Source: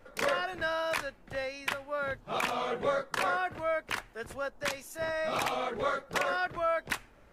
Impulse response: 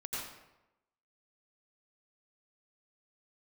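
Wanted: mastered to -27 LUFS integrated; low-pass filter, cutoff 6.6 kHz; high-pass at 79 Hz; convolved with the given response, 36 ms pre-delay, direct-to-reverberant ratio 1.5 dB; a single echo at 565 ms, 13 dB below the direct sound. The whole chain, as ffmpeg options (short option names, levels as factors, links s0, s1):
-filter_complex "[0:a]highpass=79,lowpass=6600,aecho=1:1:565:0.224,asplit=2[s0][s1];[1:a]atrim=start_sample=2205,adelay=36[s2];[s1][s2]afir=irnorm=-1:irlink=0,volume=0.668[s3];[s0][s3]amix=inputs=2:normalize=0,volume=1.5"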